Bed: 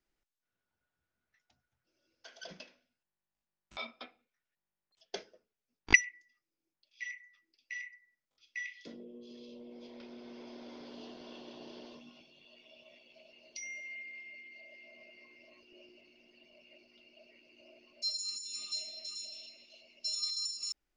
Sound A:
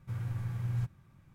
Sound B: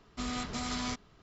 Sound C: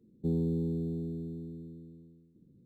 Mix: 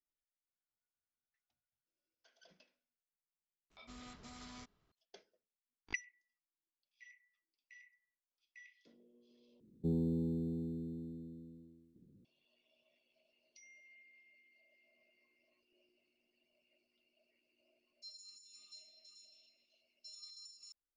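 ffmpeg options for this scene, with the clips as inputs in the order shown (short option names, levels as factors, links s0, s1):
-filter_complex "[0:a]volume=0.126[s0];[3:a]aecho=1:1:81:0.376[s1];[s0]asplit=2[s2][s3];[s2]atrim=end=9.604[s4];[s1]atrim=end=2.65,asetpts=PTS-STARTPTS,volume=0.631[s5];[s3]atrim=start=12.246[s6];[2:a]atrim=end=1.22,asetpts=PTS-STARTPTS,volume=0.133,afade=t=in:d=0.004:c=hsin,afade=t=out:st=1.216:d=0.004:c=hsin,adelay=3700[s7];[s4][s5]acrossfade=d=0.004:c1=hsin:c2=hsin[s8];[s8][s6]acrossfade=d=0.004:c1=hsin:c2=hsin[s9];[s9][s7]amix=inputs=2:normalize=0"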